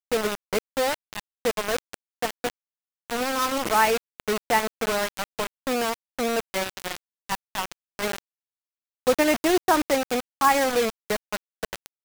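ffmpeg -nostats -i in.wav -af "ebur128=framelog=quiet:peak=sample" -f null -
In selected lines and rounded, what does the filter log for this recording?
Integrated loudness:
  I:         -25.7 LUFS
  Threshold: -36.0 LUFS
Loudness range:
  LRA:         6.0 LU
  Threshold: -46.2 LUFS
  LRA low:   -29.6 LUFS
  LRA high:  -23.6 LUFS
Sample peak:
  Peak:       -6.9 dBFS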